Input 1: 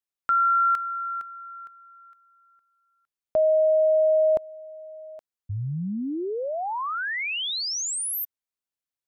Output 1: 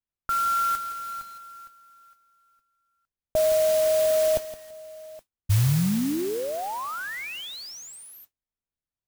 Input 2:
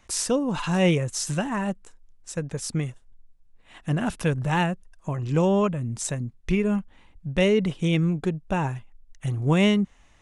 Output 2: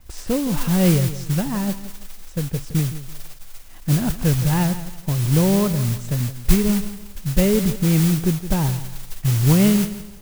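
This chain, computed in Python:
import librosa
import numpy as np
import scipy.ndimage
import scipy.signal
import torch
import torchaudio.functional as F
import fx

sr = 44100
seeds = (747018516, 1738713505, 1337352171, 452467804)

y = fx.riaa(x, sr, side='playback')
y = fx.mod_noise(y, sr, seeds[0], snr_db=13)
y = fx.echo_crushed(y, sr, ms=167, feedback_pct=35, bits=6, wet_db=-13)
y = y * librosa.db_to_amplitude(-3.0)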